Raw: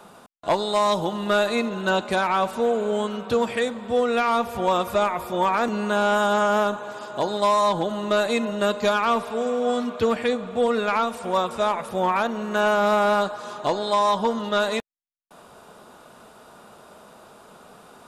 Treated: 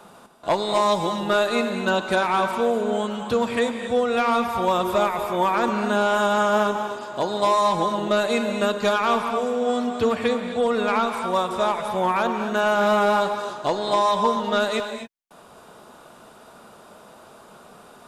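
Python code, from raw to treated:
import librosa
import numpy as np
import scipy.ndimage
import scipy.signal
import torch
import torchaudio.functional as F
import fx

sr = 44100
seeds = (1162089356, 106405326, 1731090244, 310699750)

y = fx.rev_gated(x, sr, seeds[0], gate_ms=280, shape='rising', drr_db=6.5)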